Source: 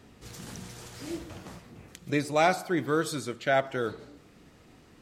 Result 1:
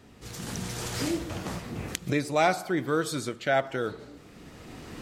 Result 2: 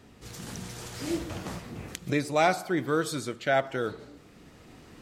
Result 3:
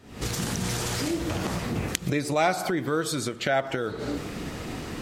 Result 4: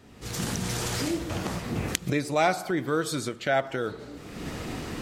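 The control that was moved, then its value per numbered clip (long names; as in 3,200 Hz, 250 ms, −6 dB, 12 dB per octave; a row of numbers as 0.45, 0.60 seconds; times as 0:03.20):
camcorder AGC, rising by: 13, 5.2, 90, 33 dB per second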